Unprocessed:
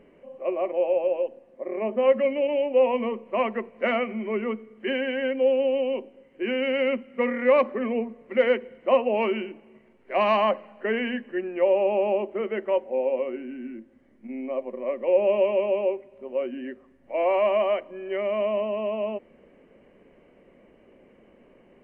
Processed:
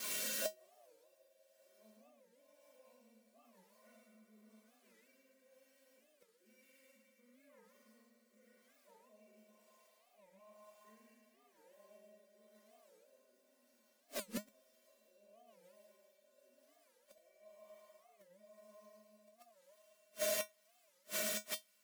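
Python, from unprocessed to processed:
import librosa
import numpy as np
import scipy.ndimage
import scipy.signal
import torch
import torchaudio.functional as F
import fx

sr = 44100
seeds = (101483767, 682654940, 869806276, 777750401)

y = x + 0.5 * 10.0 ** (-16.5 / 20.0) * np.diff(np.sign(x), prepend=np.sign(x[:1]))
y = fx.recorder_agc(y, sr, target_db=-12.0, rise_db_per_s=57.0, max_gain_db=30)
y = fx.doubler(y, sr, ms=41.0, db=-2.5)
y = fx.echo_wet_bandpass(y, sr, ms=196, feedback_pct=83, hz=1100.0, wet_db=-5.0)
y = fx.rotary(y, sr, hz=1.0)
y = fx.echo_feedback(y, sr, ms=108, feedback_pct=52, wet_db=-5.5)
y = fx.gate_flip(y, sr, shuts_db=-14.0, range_db=-40)
y = fx.comb_fb(y, sr, f0_hz=210.0, decay_s=0.15, harmonics='odd', damping=0.0, mix_pct=90)
y = fx.record_warp(y, sr, rpm=45.0, depth_cents=250.0)
y = F.gain(torch.from_numpy(y), 3.0).numpy()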